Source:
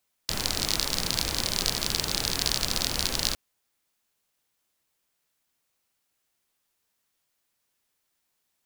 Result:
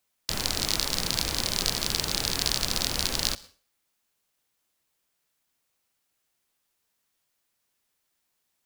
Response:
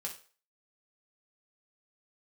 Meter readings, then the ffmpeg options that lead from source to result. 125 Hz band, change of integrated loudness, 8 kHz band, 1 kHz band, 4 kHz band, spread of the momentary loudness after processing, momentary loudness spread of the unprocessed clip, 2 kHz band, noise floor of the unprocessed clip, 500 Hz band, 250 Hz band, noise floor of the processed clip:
0.0 dB, 0.0 dB, 0.0 dB, 0.0 dB, 0.0 dB, 4 LU, 4 LU, 0.0 dB, −77 dBFS, 0.0 dB, 0.0 dB, −77 dBFS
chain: -filter_complex "[0:a]asplit=2[link_01][link_02];[1:a]atrim=start_sample=2205,adelay=110[link_03];[link_02][link_03]afir=irnorm=-1:irlink=0,volume=-20dB[link_04];[link_01][link_04]amix=inputs=2:normalize=0"

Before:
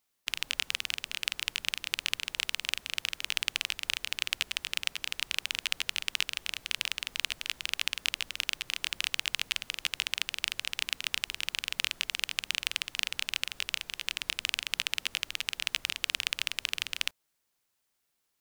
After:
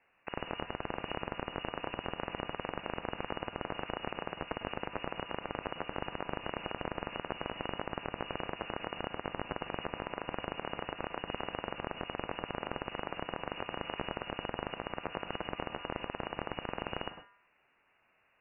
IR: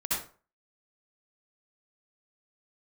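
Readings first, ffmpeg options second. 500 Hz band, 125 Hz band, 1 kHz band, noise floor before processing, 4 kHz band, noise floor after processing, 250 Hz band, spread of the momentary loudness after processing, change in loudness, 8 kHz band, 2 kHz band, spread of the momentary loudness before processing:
+17.5 dB, +13.0 dB, +9.5 dB, −79 dBFS, −15.0 dB, −72 dBFS, +17.0 dB, 1 LU, −8.0 dB, below −40 dB, −9.5 dB, 3 LU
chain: -filter_complex "[0:a]bandreject=frequency=212.7:width_type=h:width=4,bandreject=frequency=425.4:width_type=h:width=4,bandreject=frequency=638.1:width_type=h:width=4,bandreject=frequency=850.8:width_type=h:width=4,bandreject=frequency=1063.5:width_type=h:width=4,bandreject=frequency=1276.2:width_type=h:width=4,bandreject=frequency=1488.9:width_type=h:width=4,bandreject=frequency=1701.6:width_type=h:width=4,bandreject=frequency=1914.3:width_type=h:width=4,acompressor=threshold=-35dB:ratio=6,alimiter=limit=-23.5dB:level=0:latency=1:release=46,asplit=2[link_01][link_02];[1:a]atrim=start_sample=2205,asetrate=74970,aresample=44100,adelay=61[link_03];[link_02][link_03]afir=irnorm=-1:irlink=0,volume=-12.5dB[link_04];[link_01][link_04]amix=inputs=2:normalize=0,lowpass=frequency=2500:width_type=q:width=0.5098,lowpass=frequency=2500:width_type=q:width=0.6013,lowpass=frequency=2500:width_type=q:width=0.9,lowpass=frequency=2500:width_type=q:width=2.563,afreqshift=-2900,volume=16dB"

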